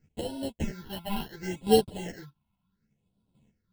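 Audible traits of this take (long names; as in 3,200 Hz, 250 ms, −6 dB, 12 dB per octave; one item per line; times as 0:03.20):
aliases and images of a low sample rate 1,200 Hz, jitter 0%
phaser sweep stages 6, 0.7 Hz, lowest notch 450–1,900 Hz
chopped level 0.6 Hz, depth 65%, duty 10%
a shimmering, thickened sound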